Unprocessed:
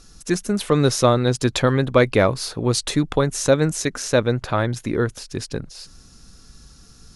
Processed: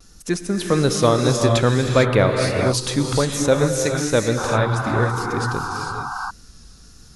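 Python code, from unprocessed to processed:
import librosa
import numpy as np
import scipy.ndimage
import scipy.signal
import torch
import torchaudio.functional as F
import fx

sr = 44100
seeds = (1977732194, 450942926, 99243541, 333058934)

y = fx.vibrato(x, sr, rate_hz=1.6, depth_cents=68.0)
y = fx.rev_gated(y, sr, seeds[0], gate_ms=480, shape='rising', drr_db=2.0)
y = fx.spec_paint(y, sr, seeds[1], shape='noise', start_s=4.37, length_s=1.94, low_hz=720.0, high_hz=1600.0, level_db=-27.0)
y = y * librosa.db_to_amplitude(-1.0)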